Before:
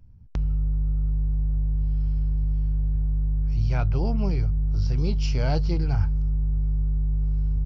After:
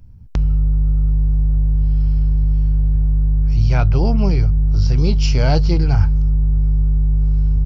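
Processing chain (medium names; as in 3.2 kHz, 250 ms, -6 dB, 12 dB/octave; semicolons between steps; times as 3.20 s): treble shelf 4.9 kHz +4 dB; trim +8.5 dB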